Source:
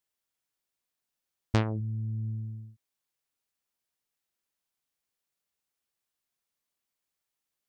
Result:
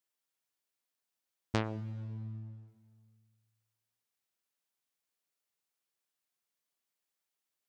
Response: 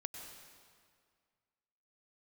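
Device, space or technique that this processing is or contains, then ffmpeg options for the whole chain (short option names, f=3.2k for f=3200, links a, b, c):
compressed reverb return: -filter_complex "[0:a]asettb=1/sr,asplit=3[a][b][c];[a]atrim=end=1.924[d];[b]atrim=start=1.92:end=2.68,asetpts=PTS-STARTPTS,afade=t=in:d=0.004:c=qsin,afade=t=out:st=0.756:d=0.004:c=qsin,lowpass=6.5k[e];[c]atrim=start=2.676[f];[d][e]acrossfade=d=0.004:c1=hsin:c2=qsin[g];[g][f]acrossfade=d=0.004:c1=qsin:c2=hsin,asplit=2[h][i];[1:a]atrim=start_sample=2205[j];[i][j]afir=irnorm=-1:irlink=0,acompressor=threshold=-32dB:ratio=6,volume=-6dB[k];[h][k]amix=inputs=2:normalize=0,highpass=f=190:p=1,volume=-4.5dB"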